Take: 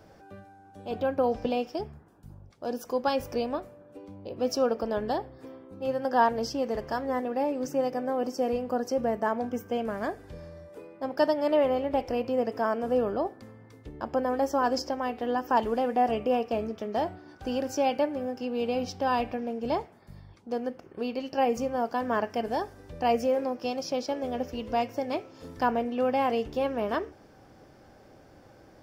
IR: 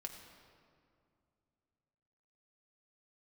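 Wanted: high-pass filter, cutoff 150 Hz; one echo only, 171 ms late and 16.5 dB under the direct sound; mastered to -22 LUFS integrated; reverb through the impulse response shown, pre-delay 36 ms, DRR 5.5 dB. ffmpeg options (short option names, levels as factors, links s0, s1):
-filter_complex "[0:a]highpass=150,aecho=1:1:171:0.15,asplit=2[s0][s1];[1:a]atrim=start_sample=2205,adelay=36[s2];[s1][s2]afir=irnorm=-1:irlink=0,volume=0.75[s3];[s0][s3]amix=inputs=2:normalize=0,volume=2"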